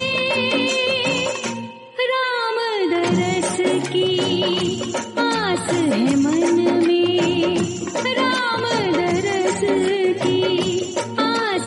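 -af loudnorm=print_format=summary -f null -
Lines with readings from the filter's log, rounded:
Input Integrated:    -19.4 LUFS
Input True Peak:      -6.5 dBTP
Input LRA:             1.3 LU
Input Threshold:     -29.4 LUFS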